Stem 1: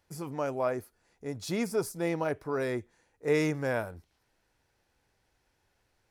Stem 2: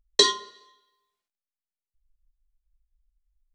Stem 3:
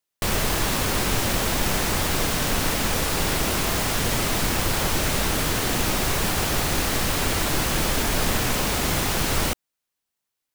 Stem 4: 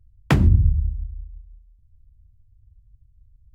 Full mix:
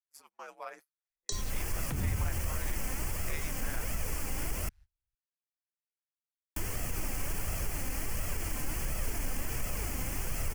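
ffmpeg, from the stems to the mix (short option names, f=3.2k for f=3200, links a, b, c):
-filter_complex "[0:a]highpass=1.2k,aeval=exprs='val(0)*sin(2*PI*73*n/s)':c=same,volume=-0.5dB,asplit=2[a][b];[1:a]highshelf=f=4.8k:t=q:w=1.5:g=12.5,adelay=1100,volume=-5.5dB[c];[2:a]lowshelf=f=130:g=8,aexciter=amount=1.1:drive=2.2:freq=2k,flanger=delay=1.5:depth=2.4:regen=46:speed=1.4:shape=sinusoidal,adelay=1100,volume=-7.5dB,asplit=3[d][e][f];[d]atrim=end=4.69,asetpts=PTS-STARTPTS,afade=t=out:st=4.686:d=0.004:c=hsin[g];[e]atrim=start=4.69:end=6.56,asetpts=PTS-STARTPTS,volume=0[h];[f]atrim=start=6.56,asetpts=PTS-STARTPTS,afade=t=in:d=0.004:c=hsin[i];[g][h][i]concat=n=3:v=0:a=1[j];[3:a]adelay=1600,volume=-9.5dB[k];[b]apad=whole_len=204898[l];[c][l]sidechaincompress=threshold=-60dB:ratio=3:attack=16:release=310[m];[j][k]amix=inputs=2:normalize=0,alimiter=limit=-22dB:level=0:latency=1:release=136,volume=0dB[n];[a][m][n]amix=inputs=3:normalize=0,agate=range=-29dB:threshold=-50dB:ratio=16:detection=peak,acrossover=split=180[o][p];[p]acompressor=threshold=-36dB:ratio=6[q];[o][q]amix=inputs=2:normalize=0"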